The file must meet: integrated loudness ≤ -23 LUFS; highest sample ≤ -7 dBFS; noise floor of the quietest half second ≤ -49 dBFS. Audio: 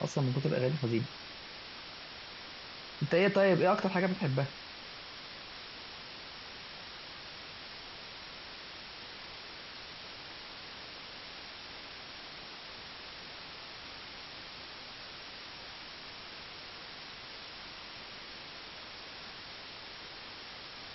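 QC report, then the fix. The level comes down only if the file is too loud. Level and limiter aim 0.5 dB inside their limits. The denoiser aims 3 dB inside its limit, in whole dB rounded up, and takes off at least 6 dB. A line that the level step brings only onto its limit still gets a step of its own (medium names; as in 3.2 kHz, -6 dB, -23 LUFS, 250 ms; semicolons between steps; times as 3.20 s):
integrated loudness -38.0 LUFS: pass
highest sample -15.0 dBFS: pass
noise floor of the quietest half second -47 dBFS: fail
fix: noise reduction 6 dB, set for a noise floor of -47 dBFS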